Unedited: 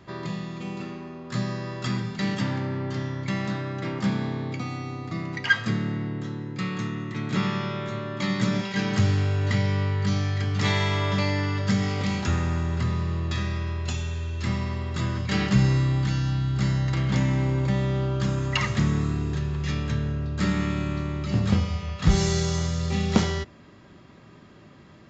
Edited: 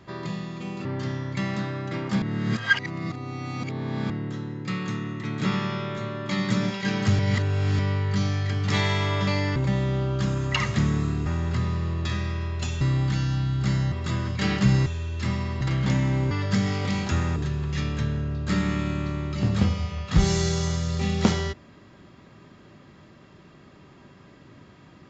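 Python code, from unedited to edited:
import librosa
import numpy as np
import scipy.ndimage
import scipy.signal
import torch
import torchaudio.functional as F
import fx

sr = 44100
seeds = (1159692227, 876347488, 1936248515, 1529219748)

y = fx.edit(x, sr, fx.cut(start_s=0.85, length_s=1.91),
    fx.reverse_span(start_s=4.13, length_s=1.88),
    fx.reverse_span(start_s=9.1, length_s=0.6),
    fx.swap(start_s=11.47, length_s=1.05, other_s=17.57, other_length_s=1.7),
    fx.swap(start_s=14.07, length_s=0.75, other_s=15.76, other_length_s=1.11), tone=tone)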